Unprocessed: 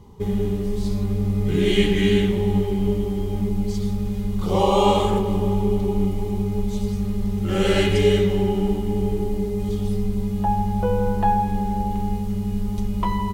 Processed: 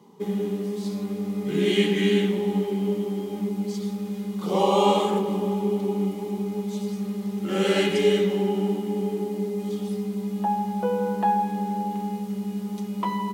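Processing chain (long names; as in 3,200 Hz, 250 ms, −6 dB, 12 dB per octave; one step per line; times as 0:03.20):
Butterworth high-pass 170 Hz 36 dB per octave
level −2 dB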